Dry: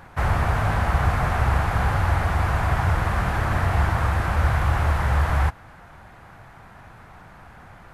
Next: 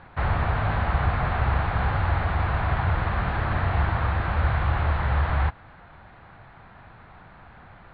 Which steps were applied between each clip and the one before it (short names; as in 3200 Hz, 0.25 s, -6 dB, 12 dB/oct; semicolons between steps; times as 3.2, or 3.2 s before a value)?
steep low-pass 4300 Hz 72 dB/oct; gain -2.5 dB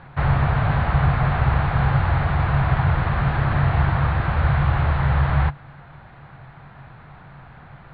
bell 140 Hz +15 dB 0.23 oct; gain +2.5 dB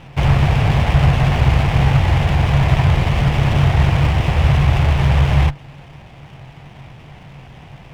minimum comb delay 0.33 ms; gain +5.5 dB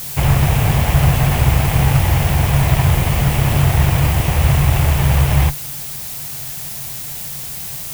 added noise blue -28 dBFS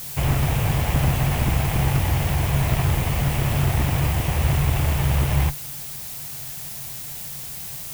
one-sided fold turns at -9.5 dBFS; gain -6 dB